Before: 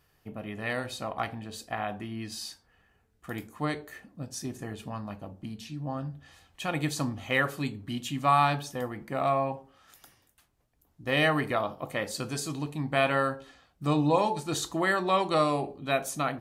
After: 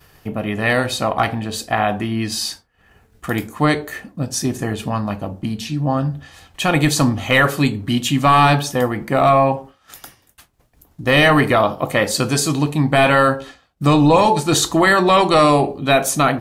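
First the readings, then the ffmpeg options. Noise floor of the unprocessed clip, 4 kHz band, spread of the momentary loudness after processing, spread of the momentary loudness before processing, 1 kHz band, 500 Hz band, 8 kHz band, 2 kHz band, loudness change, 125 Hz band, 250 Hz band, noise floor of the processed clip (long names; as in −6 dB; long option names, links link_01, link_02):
−69 dBFS, +14.0 dB, 13 LU, 16 LU, +12.5 dB, +13.0 dB, +15.5 dB, +13.0 dB, +13.0 dB, +14.5 dB, +14.0 dB, −58 dBFS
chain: -af "apsyclip=22.5dB,acompressor=mode=upward:threshold=-20dB:ratio=2.5,agate=range=-33dB:threshold=-24dB:ratio=3:detection=peak,volume=-7dB"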